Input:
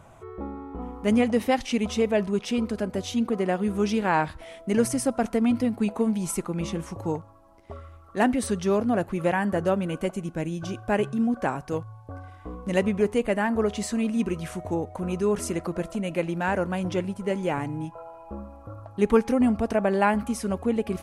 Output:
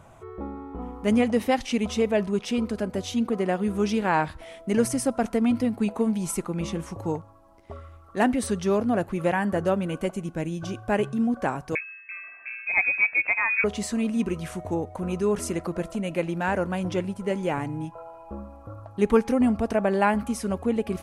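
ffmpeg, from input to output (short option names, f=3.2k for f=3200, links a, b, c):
-filter_complex "[0:a]asettb=1/sr,asplit=3[a][b][c];[a]atrim=end=11.754[d];[b]atrim=start=11.75:end=13.64,asetpts=PTS-STARTPTS,afade=t=in:d=0.004:c=qsin,afade=t=out:st=1.886:d=0.004:c=qsin,lowpass=f=2.3k:t=q:w=0.5098,lowpass=f=2.3k:t=q:w=0.6013,lowpass=f=2.3k:t=q:w=0.9,lowpass=f=2.3k:t=q:w=2.563,afreqshift=-2700[e];[c]atrim=start=13.636[f];[d][e]acrossfade=d=0.004:c1=hsin:c2=qsin[g];[g][f]acrossfade=d=0.004:c1=qsin:c2=hsin"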